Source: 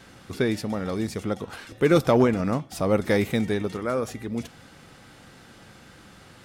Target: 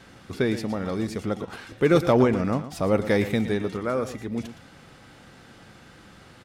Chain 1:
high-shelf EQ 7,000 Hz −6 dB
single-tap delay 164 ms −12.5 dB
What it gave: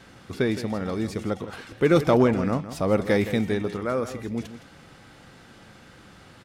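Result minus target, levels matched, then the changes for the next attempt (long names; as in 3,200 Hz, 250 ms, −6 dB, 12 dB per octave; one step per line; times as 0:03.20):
echo 49 ms late
change: single-tap delay 115 ms −12.5 dB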